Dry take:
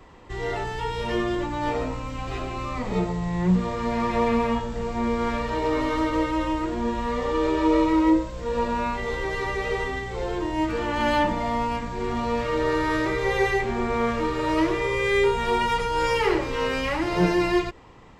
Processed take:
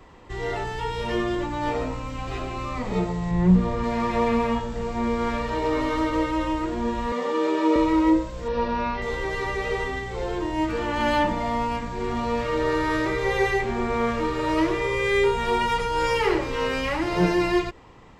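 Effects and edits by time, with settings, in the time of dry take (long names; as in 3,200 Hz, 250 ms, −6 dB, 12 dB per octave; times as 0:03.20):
0:03.31–0:03.84: spectral tilt −1.5 dB per octave
0:07.12–0:07.76: Butterworth high-pass 180 Hz
0:08.48–0:09.02: Butterworth low-pass 5,900 Hz 72 dB per octave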